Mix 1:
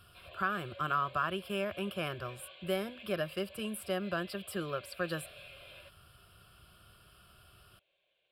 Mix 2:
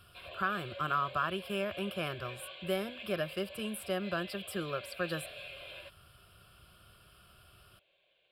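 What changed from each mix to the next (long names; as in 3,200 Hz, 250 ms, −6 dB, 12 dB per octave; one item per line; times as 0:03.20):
background +5.5 dB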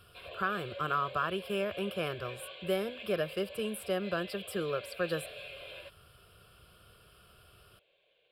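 master: add parametric band 460 Hz +10.5 dB 0.3 octaves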